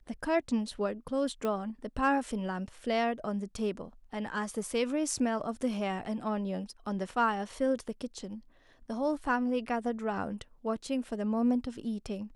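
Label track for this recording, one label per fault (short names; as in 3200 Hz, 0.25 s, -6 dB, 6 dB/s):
1.450000	1.450000	pop -21 dBFS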